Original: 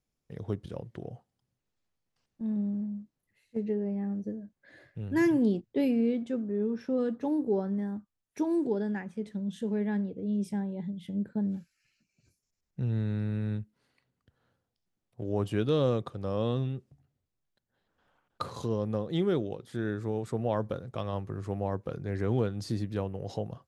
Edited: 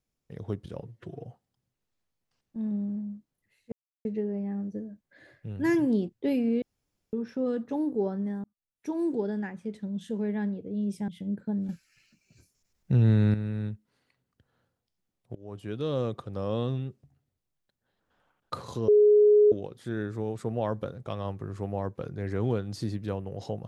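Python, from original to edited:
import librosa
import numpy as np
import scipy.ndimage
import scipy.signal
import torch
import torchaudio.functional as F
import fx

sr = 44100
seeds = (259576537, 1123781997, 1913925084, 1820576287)

y = fx.edit(x, sr, fx.stretch_span(start_s=0.8, length_s=0.3, factor=1.5),
    fx.insert_silence(at_s=3.57, length_s=0.33),
    fx.room_tone_fill(start_s=6.14, length_s=0.51),
    fx.fade_in_span(start_s=7.96, length_s=0.63),
    fx.cut(start_s=10.6, length_s=0.36),
    fx.clip_gain(start_s=11.57, length_s=1.65, db=9.0),
    fx.fade_in_from(start_s=15.23, length_s=0.9, floor_db=-20.5),
    fx.bleep(start_s=18.76, length_s=0.64, hz=418.0, db=-15.0), tone=tone)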